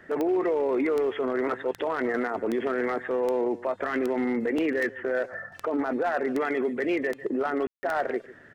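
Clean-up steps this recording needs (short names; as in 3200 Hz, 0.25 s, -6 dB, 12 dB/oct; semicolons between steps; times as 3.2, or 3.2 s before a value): clip repair -19.5 dBFS; de-click; room tone fill 7.67–7.83; inverse comb 0.147 s -18.5 dB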